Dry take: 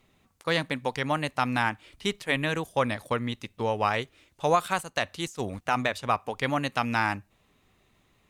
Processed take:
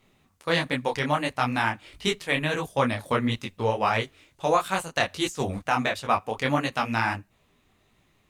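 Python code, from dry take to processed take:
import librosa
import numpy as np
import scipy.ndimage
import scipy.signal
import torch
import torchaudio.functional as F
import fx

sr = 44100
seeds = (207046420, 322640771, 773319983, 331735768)

y = fx.rider(x, sr, range_db=3, speed_s=0.5)
y = fx.detune_double(y, sr, cents=52)
y = F.gain(torch.from_numpy(y), 6.0).numpy()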